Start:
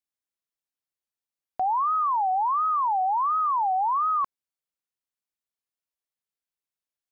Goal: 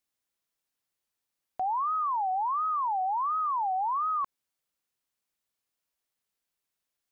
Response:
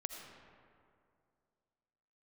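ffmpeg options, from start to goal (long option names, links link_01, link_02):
-af "alimiter=level_in=8dB:limit=-24dB:level=0:latency=1,volume=-8dB,volume=6.5dB"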